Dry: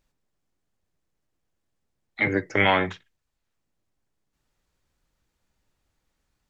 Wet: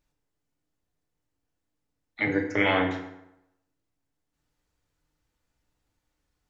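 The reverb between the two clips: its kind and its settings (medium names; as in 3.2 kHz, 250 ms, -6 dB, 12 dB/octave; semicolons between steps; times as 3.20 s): FDN reverb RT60 0.86 s, low-frequency decay 0.95×, high-frequency decay 0.7×, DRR 1 dB; trim -5 dB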